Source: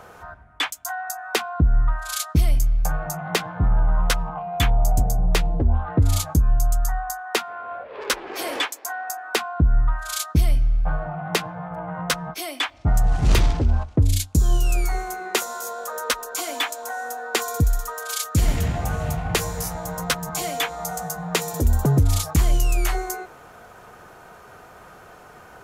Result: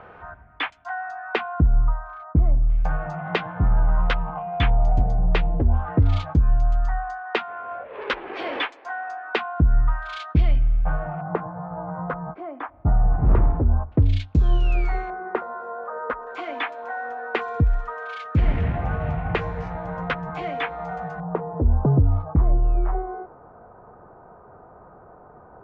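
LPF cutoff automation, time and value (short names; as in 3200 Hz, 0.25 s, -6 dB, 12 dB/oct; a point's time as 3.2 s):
LPF 24 dB/oct
2800 Hz
from 1.66 s 1200 Hz
from 2.7 s 3100 Hz
from 11.21 s 1300 Hz
from 13.92 s 3100 Hz
from 15.1 s 1500 Hz
from 16.27 s 2500 Hz
from 21.2 s 1100 Hz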